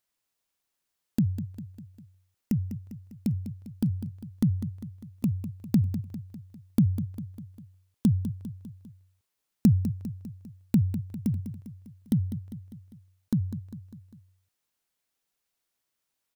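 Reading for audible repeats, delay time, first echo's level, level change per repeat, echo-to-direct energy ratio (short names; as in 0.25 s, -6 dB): 4, 0.2 s, -11.0 dB, -5.5 dB, -9.5 dB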